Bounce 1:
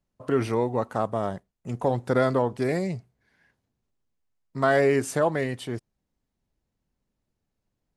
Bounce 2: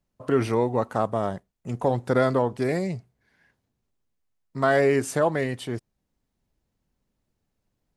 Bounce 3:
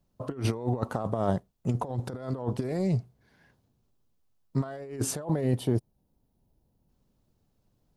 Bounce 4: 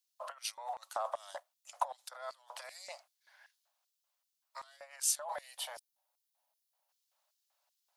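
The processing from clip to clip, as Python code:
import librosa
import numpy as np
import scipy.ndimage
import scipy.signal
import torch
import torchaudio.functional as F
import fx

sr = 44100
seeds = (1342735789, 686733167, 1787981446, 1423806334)

y1 = fx.rider(x, sr, range_db=3, speed_s=2.0)
y2 = fx.graphic_eq(y1, sr, hz=(125, 2000, 8000), db=(3, -8, -4))
y2 = fx.spec_box(y2, sr, start_s=5.24, length_s=1.65, low_hz=1000.0, high_hz=8900.0, gain_db=-6)
y2 = fx.over_compress(y2, sr, threshold_db=-28.0, ratio=-0.5)
y3 = scipy.signal.sosfilt(scipy.signal.butter(16, 550.0, 'highpass', fs=sr, output='sos'), y2)
y3 = fx.filter_lfo_highpass(y3, sr, shape='square', hz=2.6, low_hz=880.0, high_hz=4000.0, q=0.84)
y3 = F.gain(torch.from_numpy(y3), 2.5).numpy()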